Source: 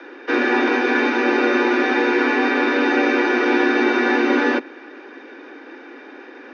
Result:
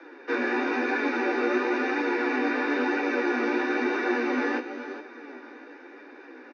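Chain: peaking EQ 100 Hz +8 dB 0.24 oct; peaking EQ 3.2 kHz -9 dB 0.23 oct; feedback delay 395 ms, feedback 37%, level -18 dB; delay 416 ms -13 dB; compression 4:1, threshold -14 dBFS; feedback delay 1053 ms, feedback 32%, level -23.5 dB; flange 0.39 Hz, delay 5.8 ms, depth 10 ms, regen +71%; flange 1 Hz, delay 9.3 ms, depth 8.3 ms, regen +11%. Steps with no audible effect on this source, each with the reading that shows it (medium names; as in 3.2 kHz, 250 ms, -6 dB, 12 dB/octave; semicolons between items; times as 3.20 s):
peaking EQ 100 Hz: input has nothing below 210 Hz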